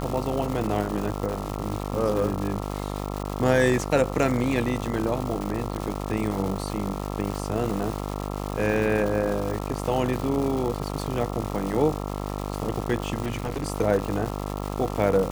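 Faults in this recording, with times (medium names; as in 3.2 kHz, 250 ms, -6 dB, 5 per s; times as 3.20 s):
buzz 50 Hz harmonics 27 -31 dBFS
crackle 390 per s -29 dBFS
13.22–13.66 s: clipped -23.5 dBFS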